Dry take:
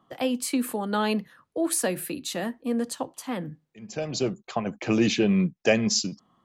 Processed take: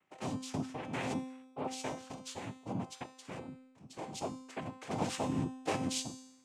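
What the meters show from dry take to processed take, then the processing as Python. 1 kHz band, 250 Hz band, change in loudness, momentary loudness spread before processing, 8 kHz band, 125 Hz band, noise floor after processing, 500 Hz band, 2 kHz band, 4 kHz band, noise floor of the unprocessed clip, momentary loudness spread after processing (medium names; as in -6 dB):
-7.0 dB, -13.5 dB, -12.5 dB, 12 LU, -13.5 dB, -9.0 dB, -62 dBFS, -14.0 dB, -13.5 dB, -12.5 dB, -74 dBFS, 12 LU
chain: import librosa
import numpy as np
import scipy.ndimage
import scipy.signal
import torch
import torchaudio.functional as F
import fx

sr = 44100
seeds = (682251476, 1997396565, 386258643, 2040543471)

y = fx.noise_vocoder(x, sr, seeds[0], bands=4)
y = fx.comb_fb(y, sr, f0_hz=260.0, decay_s=0.92, harmonics='all', damping=0.0, mix_pct=80)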